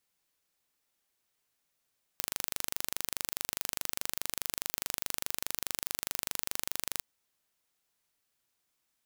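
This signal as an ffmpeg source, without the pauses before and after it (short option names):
-f lavfi -i "aevalsrc='0.562*eq(mod(n,1778),0)':d=4.81:s=44100"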